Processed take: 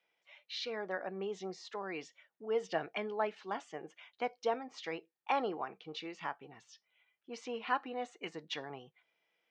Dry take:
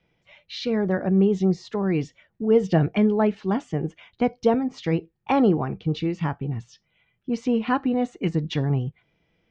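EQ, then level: high-pass 690 Hz 12 dB/octave; -6.5 dB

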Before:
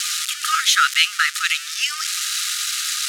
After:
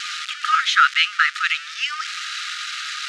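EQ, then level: tape spacing loss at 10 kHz 29 dB; +6.5 dB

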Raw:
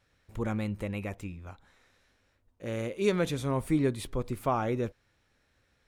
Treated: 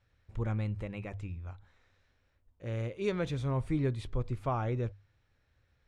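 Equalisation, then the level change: distance through air 82 m; resonant low shelf 150 Hz +7 dB, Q 1.5; hum notches 50/100 Hz; -4.5 dB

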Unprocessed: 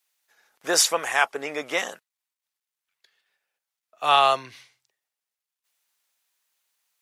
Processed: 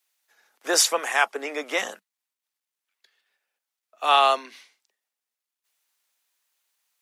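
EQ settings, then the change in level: steep high-pass 190 Hz 96 dB/octave; 0.0 dB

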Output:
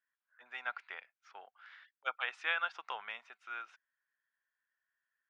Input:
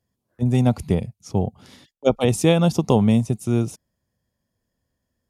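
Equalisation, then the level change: ladder high-pass 1.4 kHz, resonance 70%; four-pole ladder low-pass 3.7 kHz, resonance 20%; treble shelf 2.1 kHz -8 dB; +11.0 dB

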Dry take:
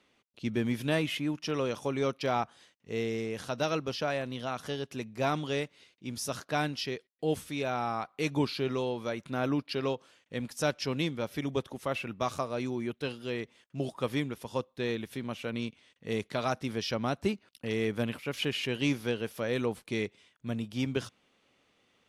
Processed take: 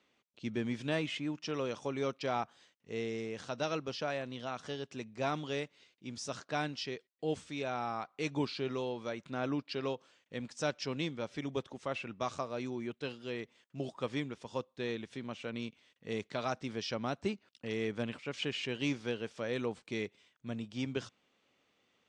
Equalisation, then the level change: steep low-pass 8.3 kHz 48 dB/octave; bass shelf 74 Hz -8.5 dB; -4.5 dB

